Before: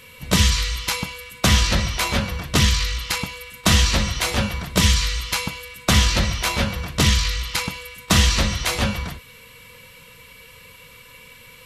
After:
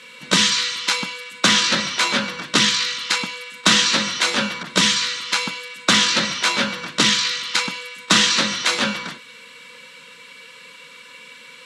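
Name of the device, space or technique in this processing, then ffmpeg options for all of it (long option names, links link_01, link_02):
television speaker: -filter_complex "[0:a]highpass=frequency=210:width=0.5412,highpass=frequency=210:width=1.3066,equalizer=frequency=410:width_type=q:width=4:gain=-4,equalizer=frequency=710:width_type=q:width=4:gain=-8,equalizer=frequency=1500:width_type=q:width=4:gain=5,equalizer=frequency=3800:width_type=q:width=4:gain=4,lowpass=frequency=8600:width=0.5412,lowpass=frequency=8600:width=1.3066,asettb=1/sr,asplit=3[link_01][link_02][link_03];[link_01]atrim=end=4.634[link_04];[link_02]atrim=start=4.63:end=5.41,asetpts=PTS-STARTPTS,afade=type=in:duration=0.004:curve=qsin,afade=type=out:start_time=0.776:duration=0.004:curve=qsin,adynamicequalizer=threshold=0.0282:dfrequency=2200:dqfactor=0.7:tfrequency=2200:tqfactor=0.7:attack=5:release=100:ratio=0.375:range=2:mode=cutabove:tftype=highshelf[link_05];[link_03]atrim=start=5.406[link_06];[link_04][link_05]acrossfade=duration=0.004:curve1=hsin:curve2=qsin[link_07];[link_07][link_06]acrossfade=duration=0.004:curve1=qsin:curve2=hsin,volume=3dB"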